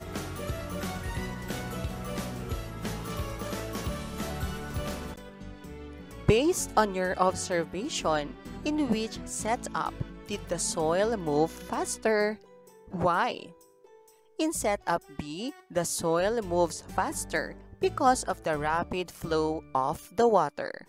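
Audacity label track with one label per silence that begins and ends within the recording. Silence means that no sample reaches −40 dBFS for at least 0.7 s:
13.470000	14.390000	silence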